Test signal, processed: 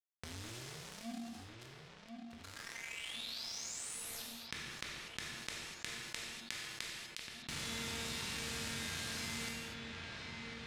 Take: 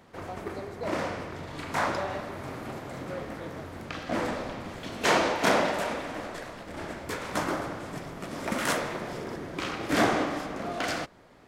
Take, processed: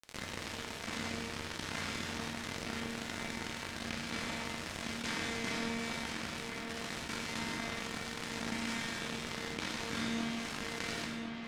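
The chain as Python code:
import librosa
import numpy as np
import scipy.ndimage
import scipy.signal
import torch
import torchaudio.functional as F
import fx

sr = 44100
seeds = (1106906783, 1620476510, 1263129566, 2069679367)

p1 = fx.bin_compress(x, sr, power=0.4)
p2 = scipy.signal.sosfilt(scipy.signal.butter(2, 59.0, 'highpass', fs=sr, output='sos'), p1)
p3 = fx.tone_stack(p2, sr, knobs='6-0-2')
p4 = fx.quant_dither(p3, sr, seeds[0], bits=8, dither='triangular')
p5 = p3 + (p4 * 10.0 ** (-6.0 / 20.0))
p6 = fx.comb_fb(p5, sr, f0_hz=230.0, decay_s=1.1, harmonics='all', damping=0.0, mix_pct=90)
p7 = np.sign(p6) * np.maximum(np.abs(p6) - 10.0 ** (-54.5 / 20.0), 0.0)
p8 = fx.air_absorb(p7, sr, metres=66.0)
p9 = p8 + fx.echo_wet_lowpass(p8, sr, ms=1048, feedback_pct=68, hz=3700.0, wet_db=-18, dry=0)
p10 = fx.rev_gated(p9, sr, seeds[1], gate_ms=270, shape='falling', drr_db=4.0)
p11 = fx.env_flatten(p10, sr, amount_pct=70)
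y = p11 * 10.0 ** (18.0 / 20.0)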